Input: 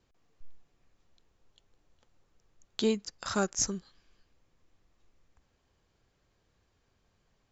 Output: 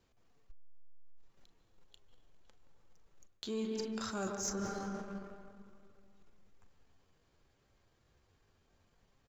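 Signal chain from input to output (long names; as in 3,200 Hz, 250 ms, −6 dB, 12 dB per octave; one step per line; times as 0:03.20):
mains-hum notches 60/120/180/240/300/360 Hz
double-tracking delay 32 ms −12 dB
on a send at −6 dB: convolution reverb RT60 2.1 s, pre-delay 109 ms
on the sum: tempo change 0.81×
leveller curve on the samples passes 1
bucket-brigade delay 135 ms, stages 1,024, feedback 31%, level −13.5 dB
reversed playback
downward compressor 8 to 1, threshold −37 dBFS, peak gain reduction 17 dB
reversed playback
saturating transformer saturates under 100 Hz
level +1.5 dB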